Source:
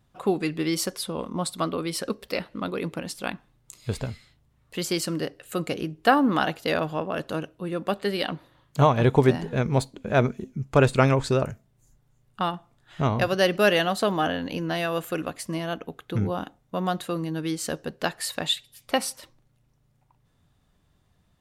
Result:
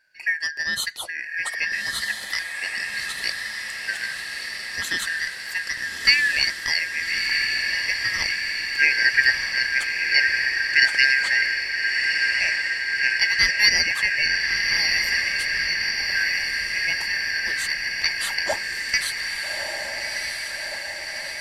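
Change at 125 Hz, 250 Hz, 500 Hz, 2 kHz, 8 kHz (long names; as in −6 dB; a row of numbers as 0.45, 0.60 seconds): below −20 dB, below −20 dB, −16.0 dB, +14.5 dB, +6.0 dB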